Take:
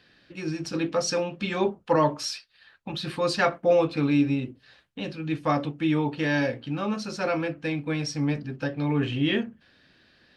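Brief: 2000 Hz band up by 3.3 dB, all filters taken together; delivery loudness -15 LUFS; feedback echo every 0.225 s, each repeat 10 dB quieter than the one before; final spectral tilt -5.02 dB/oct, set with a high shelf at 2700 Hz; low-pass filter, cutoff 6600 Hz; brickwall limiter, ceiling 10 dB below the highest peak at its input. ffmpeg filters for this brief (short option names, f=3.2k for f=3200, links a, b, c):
-af "lowpass=6.6k,equalizer=f=2k:t=o:g=6,highshelf=f=2.7k:g=-4.5,alimiter=limit=-18dB:level=0:latency=1,aecho=1:1:225|450|675|900:0.316|0.101|0.0324|0.0104,volume=13.5dB"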